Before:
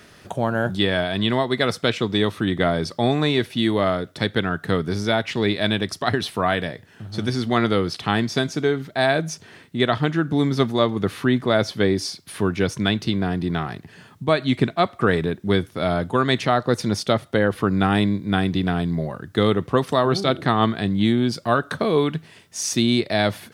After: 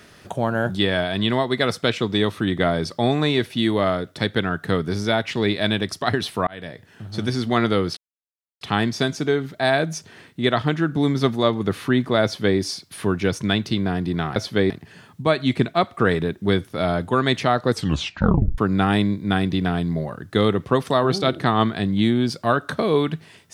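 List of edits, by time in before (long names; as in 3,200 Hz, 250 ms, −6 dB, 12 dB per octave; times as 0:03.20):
0:06.47–0:06.88: fade in
0:07.97: splice in silence 0.64 s
0:11.60–0:11.94: duplicate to 0:13.72
0:16.73: tape stop 0.87 s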